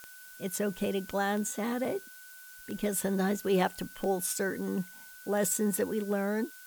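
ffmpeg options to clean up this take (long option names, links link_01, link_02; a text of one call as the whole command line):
ffmpeg -i in.wav -af "adeclick=threshold=4,bandreject=frequency=1500:width=30,afftdn=noise_reduction=27:noise_floor=-50" out.wav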